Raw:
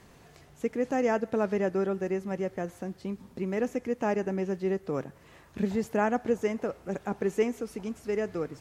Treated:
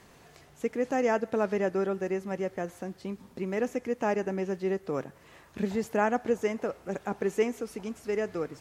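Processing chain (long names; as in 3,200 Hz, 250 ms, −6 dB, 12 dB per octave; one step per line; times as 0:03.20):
low-shelf EQ 270 Hz −5.5 dB
level +1.5 dB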